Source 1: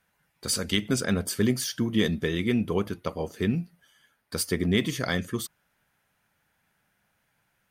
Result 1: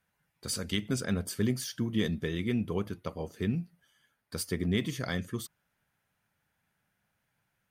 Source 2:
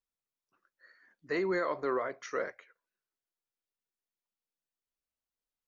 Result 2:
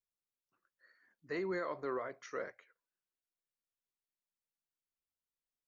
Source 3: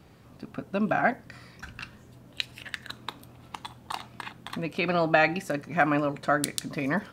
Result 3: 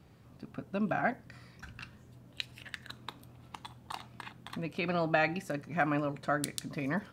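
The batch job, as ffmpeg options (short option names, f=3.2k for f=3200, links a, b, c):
-af "equalizer=f=110:w=0.77:g=4.5,volume=-7dB"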